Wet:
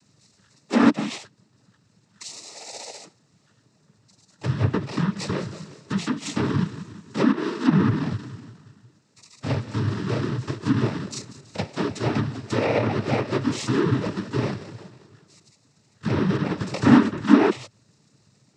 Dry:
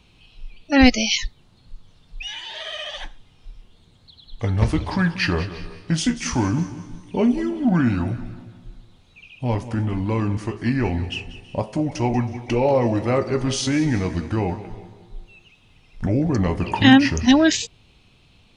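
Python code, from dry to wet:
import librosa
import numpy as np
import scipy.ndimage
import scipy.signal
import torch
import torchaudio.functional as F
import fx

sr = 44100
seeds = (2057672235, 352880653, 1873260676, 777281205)

y = fx.bit_reversed(x, sr, seeds[0], block=32)
y = fx.env_lowpass_down(y, sr, base_hz=2200.0, full_db=-14.5)
y = fx.noise_vocoder(y, sr, seeds[1], bands=12)
y = F.gain(torch.from_numpy(y), -1.0).numpy()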